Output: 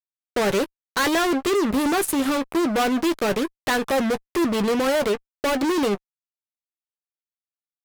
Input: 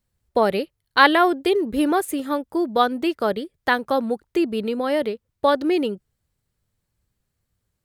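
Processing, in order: fuzz box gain 36 dB, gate -35 dBFS; doubling 15 ms -12 dB; trim -6 dB

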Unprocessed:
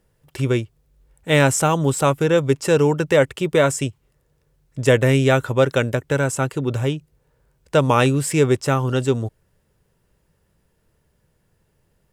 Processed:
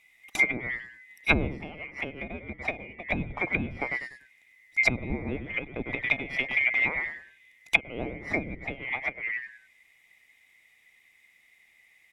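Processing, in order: split-band scrambler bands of 2 kHz; frequency-shifting echo 97 ms, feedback 31%, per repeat -140 Hz, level -9 dB; low-pass that closes with the level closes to 340 Hz, closed at -13.5 dBFS; trim +2.5 dB

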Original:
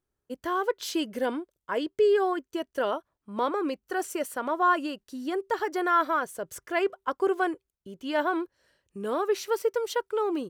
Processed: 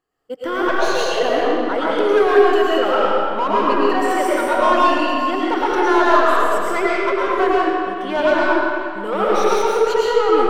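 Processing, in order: drifting ripple filter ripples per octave 1.5, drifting +0.8 Hz, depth 11 dB; 0.69–1.23 s: frequency shift +170 Hz; 1.95–2.73 s: treble shelf 4.3 kHz +9.5 dB; overdrive pedal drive 21 dB, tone 1.7 kHz, clips at -9.5 dBFS; algorithmic reverb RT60 2.4 s, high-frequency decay 0.75×, pre-delay 70 ms, DRR -7 dB; trim -3 dB

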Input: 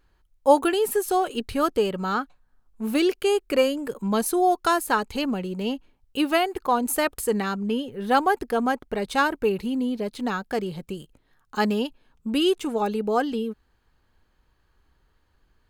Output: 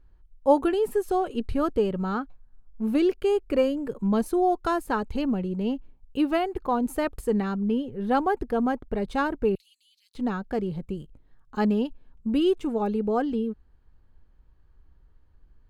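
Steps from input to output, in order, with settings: 9.55–10.15 s: inverse Chebyshev high-pass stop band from 790 Hz, stop band 70 dB; tilt EQ -3 dB/octave; trim -5 dB

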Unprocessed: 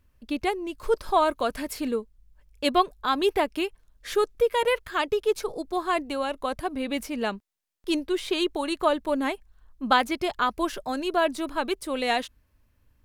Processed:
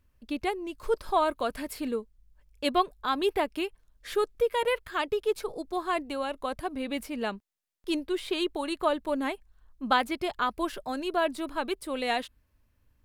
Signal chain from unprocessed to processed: dynamic bell 6.1 kHz, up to -6 dB, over -54 dBFS, Q 3.2; trim -3.5 dB

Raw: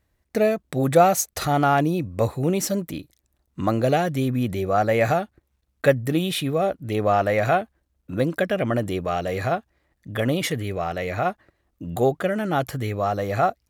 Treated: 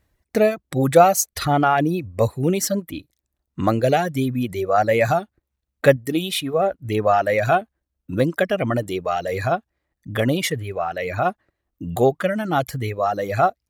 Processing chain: reverb removal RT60 1.7 s; 5.96–6.54 s: peaking EQ 120 Hz -7.5 dB 1.7 oct; trim +3.5 dB

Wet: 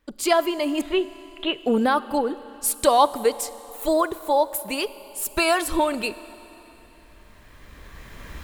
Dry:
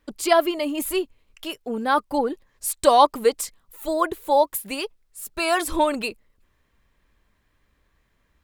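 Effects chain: recorder AGC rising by 12 dB/s; 0.81–1.58 s: Chebyshev low-pass 4.1 kHz, order 10; Schroeder reverb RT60 3.7 s, combs from 31 ms, DRR 16 dB; trim -2 dB

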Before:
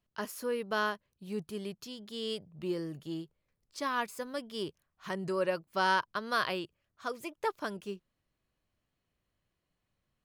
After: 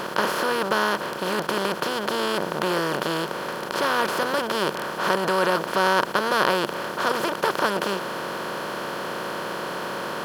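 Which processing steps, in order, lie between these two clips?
spectral levelling over time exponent 0.2; trim +2.5 dB

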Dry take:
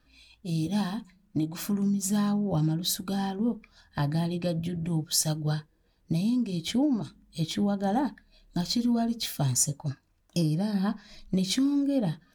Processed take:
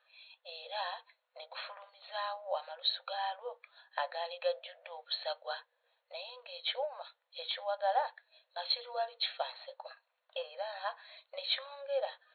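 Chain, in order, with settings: brick-wall FIR band-pass 480–4400 Hz

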